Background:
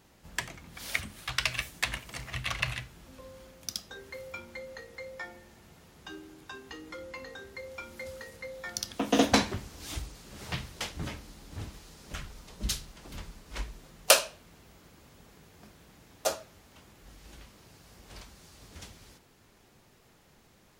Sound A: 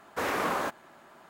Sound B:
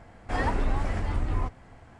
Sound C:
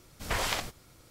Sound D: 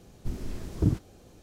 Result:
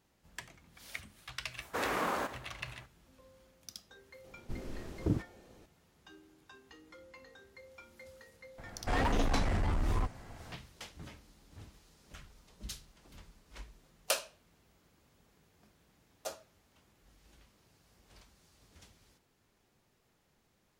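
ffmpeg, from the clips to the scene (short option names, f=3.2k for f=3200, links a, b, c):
-filter_complex "[0:a]volume=-12dB[a];[1:a]aecho=1:1:110|220|330|440:0.224|0.0895|0.0358|0.0143[b];[4:a]bass=f=250:g=-7,treble=f=4k:g=-6[c];[2:a]asoftclip=type=hard:threshold=-27dB[d];[b]atrim=end=1.29,asetpts=PTS-STARTPTS,volume=-4.5dB,afade=t=in:d=0.004:c=hsin,afade=t=out:st=1.286:d=0.004:c=hsin,adelay=1570[e];[c]atrim=end=1.42,asetpts=PTS-STARTPTS,volume=-2dB,afade=t=in:d=0.004:c=hsin,afade=t=out:st=1.416:d=0.004:c=hsin,adelay=4240[f];[d]atrim=end=1.99,asetpts=PTS-STARTPTS,afade=t=in:d=0.004:c=hsin,afade=t=out:st=1.986:d=0.004:c=hsin,adelay=378378S[g];[a][e][f][g]amix=inputs=4:normalize=0"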